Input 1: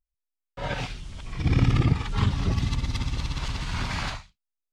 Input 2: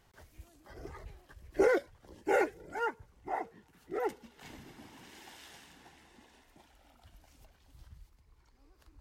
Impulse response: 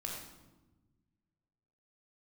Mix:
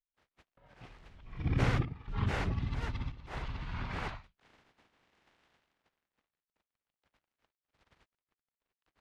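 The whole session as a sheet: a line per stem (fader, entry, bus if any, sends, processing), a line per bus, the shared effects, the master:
0:01.06 −20 dB → 0:01.43 −9 dB, 0.00 s, no send, gate pattern "xxxxx..xxxx" 130 BPM −12 dB
−6.0 dB, 0.00 s, no send, compressing power law on the bin magnitudes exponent 0.23; dead-zone distortion −56.5 dBFS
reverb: not used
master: low-pass filter 2,500 Hz 12 dB per octave

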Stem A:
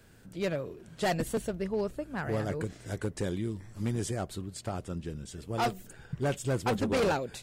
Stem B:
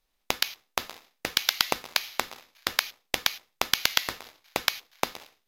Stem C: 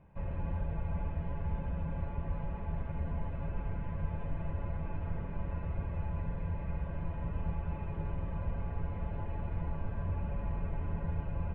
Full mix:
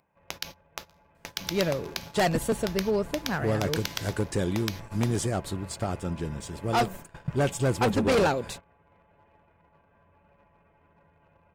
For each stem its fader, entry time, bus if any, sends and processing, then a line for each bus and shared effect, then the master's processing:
+1.5 dB, 1.15 s, no send, no processing
−13.0 dB, 0.00 s, no send, parametric band 5,900 Hz +4.5 dB 0.45 octaves
+2.5 dB, 0.00 s, no send, upward compression, threshold −44 dBFS; brickwall limiter −30.5 dBFS, peak gain reduction 7.5 dB; high-pass filter 700 Hz 6 dB per octave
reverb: not used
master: noise gate −44 dBFS, range −11 dB; leveller curve on the samples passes 1

